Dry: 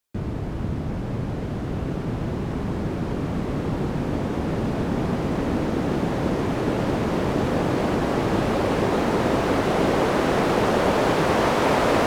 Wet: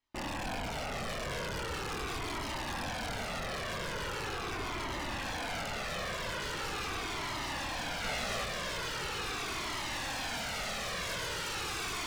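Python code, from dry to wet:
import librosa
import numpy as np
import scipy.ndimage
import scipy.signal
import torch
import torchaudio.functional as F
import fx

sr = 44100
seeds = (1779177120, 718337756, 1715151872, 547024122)

p1 = fx.rattle_buzz(x, sr, strikes_db=-27.0, level_db=-21.0)
p2 = fx.low_shelf(p1, sr, hz=180.0, db=7.0, at=(4.27, 5.14))
p3 = fx.rider(p2, sr, range_db=4, speed_s=0.5)
p4 = p2 + F.gain(torch.from_numpy(p3), 2.5).numpy()
p5 = fx.air_absorb(p4, sr, metres=170.0)
p6 = np.clip(p5, -10.0 ** (-15.0 / 20.0), 10.0 ** (-15.0 / 20.0))
p7 = fx.chorus_voices(p6, sr, voices=2, hz=0.18, base_ms=24, depth_ms=4.7, mix_pct=50)
p8 = 10.0 ** (-28.0 / 20.0) * (np.abs((p7 / 10.0 ** (-28.0 / 20.0) + 3.0) % 4.0 - 2.0) - 1.0)
p9 = fx.doubler(p8, sr, ms=16.0, db=-2.0, at=(8.02, 8.45))
y = fx.comb_cascade(p9, sr, direction='falling', hz=0.41)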